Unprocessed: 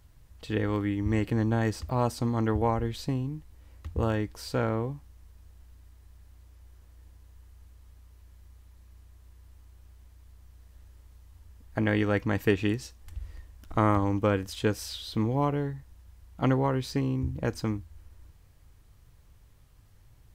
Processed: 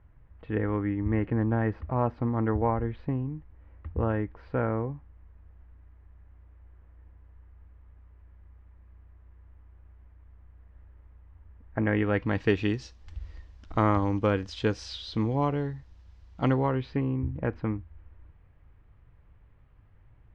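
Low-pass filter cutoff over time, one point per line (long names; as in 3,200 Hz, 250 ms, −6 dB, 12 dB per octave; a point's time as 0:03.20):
low-pass filter 24 dB per octave
0:11.84 2,100 Hz
0:12.51 5,500 Hz
0:16.42 5,500 Hz
0:17.06 2,400 Hz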